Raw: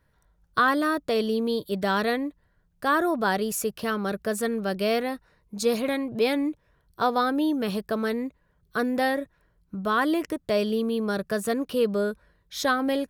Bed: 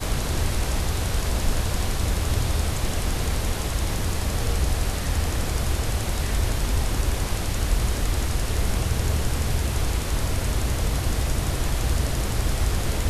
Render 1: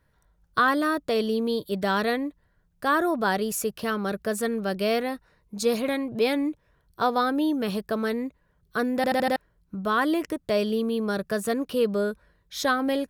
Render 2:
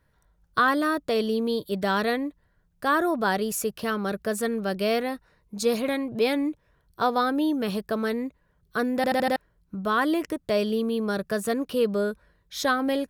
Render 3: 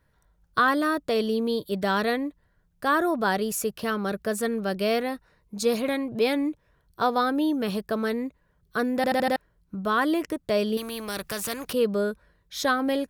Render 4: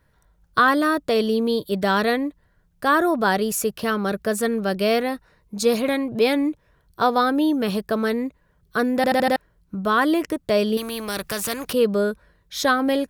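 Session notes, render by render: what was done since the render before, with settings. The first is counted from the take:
8.96 s: stutter in place 0.08 s, 5 plays
no audible change
10.77–11.73 s: spectrum-flattening compressor 2:1
trim +4.5 dB

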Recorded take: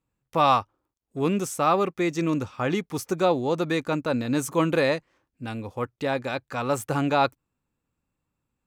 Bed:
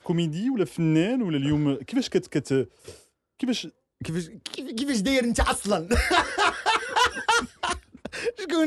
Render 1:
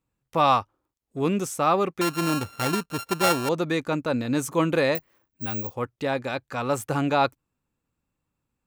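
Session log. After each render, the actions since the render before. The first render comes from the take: 2.01–3.49 s: sorted samples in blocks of 32 samples; 4.95–5.74 s: careless resampling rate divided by 2×, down filtered, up zero stuff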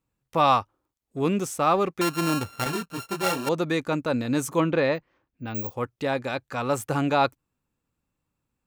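1.39–1.89 s: hysteresis with a dead band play -43.5 dBFS; 2.64–3.47 s: detune thickener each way 19 cents; 4.60–5.55 s: distance through air 160 m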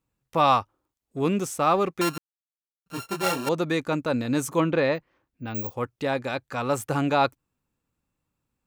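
2.18–2.86 s: mute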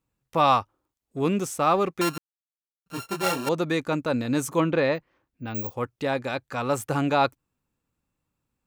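no audible change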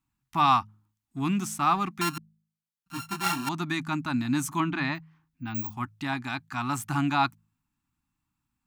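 Chebyshev band-stop 280–870 Hz, order 2; de-hum 53.11 Hz, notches 4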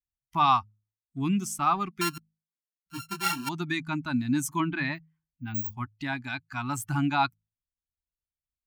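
expander on every frequency bin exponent 1.5; in parallel at -3 dB: compression, threshold -35 dBFS, peak gain reduction 15.5 dB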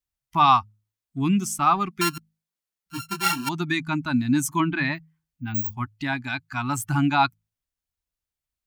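trim +5 dB

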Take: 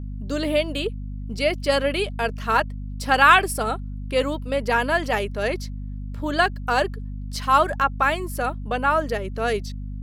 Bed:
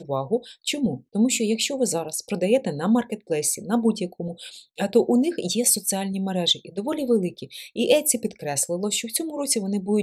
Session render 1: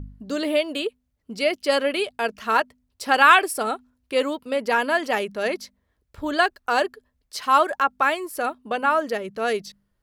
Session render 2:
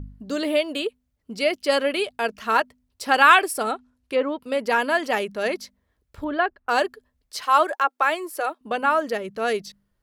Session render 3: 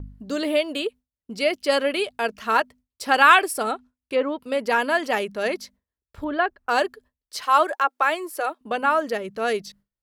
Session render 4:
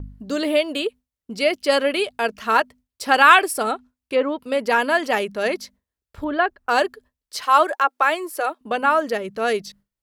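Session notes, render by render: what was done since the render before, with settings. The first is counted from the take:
de-hum 50 Hz, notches 5
3.71–4.42 s: low-pass that closes with the level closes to 1.8 kHz, closed at -19 dBFS; 6.24–6.69 s: distance through air 490 m; 7.44–8.61 s: elliptic high-pass 310 Hz
gate with hold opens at -47 dBFS
trim +2.5 dB; peak limiter -1 dBFS, peak gain reduction 1 dB

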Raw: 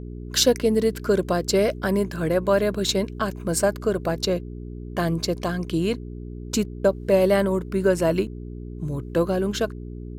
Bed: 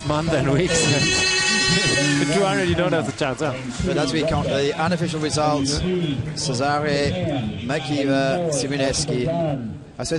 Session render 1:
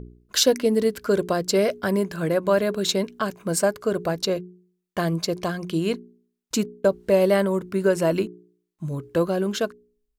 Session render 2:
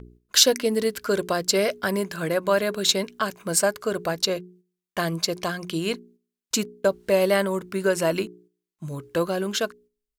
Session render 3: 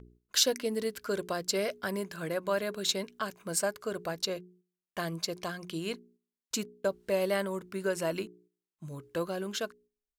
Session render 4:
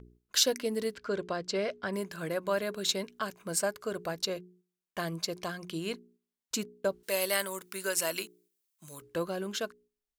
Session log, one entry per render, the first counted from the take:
de-hum 60 Hz, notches 7
gate -49 dBFS, range -7 dB; tilt shelf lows -4.5 dB, about 830 Hz
trim -9 dB
0.95–1.93 s: distance through air 110 m; 7.03–9.02 s: tilt EQ +4 dB/octave

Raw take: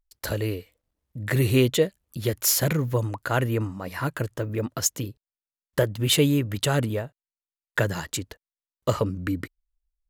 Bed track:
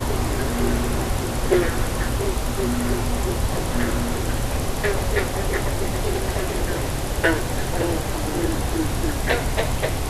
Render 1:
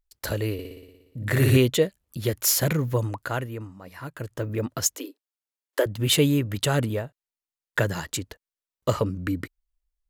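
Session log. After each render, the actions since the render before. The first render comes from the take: 0.53–1.57 s: flutter echo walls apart 10.1 m, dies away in 1.1 s; 3.18–4.44 s: dip -9.5 dB, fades 0.29 s; 4.96–5.86 s: steep high-pass 260 Hz 96 dB/octave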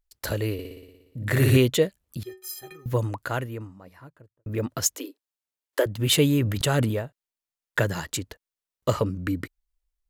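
2.23–2.86 s: inharmonic resonator 370 Hz, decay 0.31 s, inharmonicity 0.03; 3.45–4.46 s: studio fade out; 6.31–6.95 s: decay stretcher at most 45 dB/s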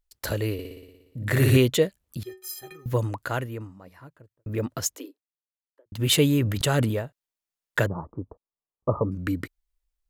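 4.48–5.92 s: studio fade out; 7.86–9.12 s: Chebyshev low-pass 1.2 kHz, order 6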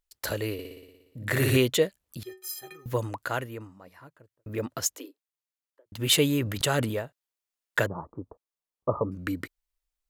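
bass shelf 260 Hz -8 dB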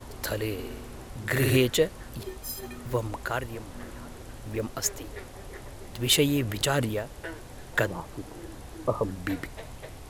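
add bed track -19.5 dB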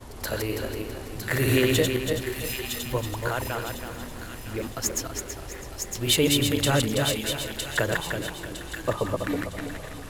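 backward echo that repeats 164 ms, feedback 60%, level -2.5 dB; feedback echo behind a high-pass 959 ms, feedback 35%, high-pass 2.1 kHz, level -5.5 dB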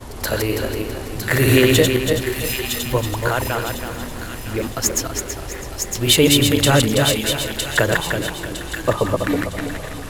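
trim +8 dB; peak limiter -1 dBFS, peak gain reduction 1.5 dB

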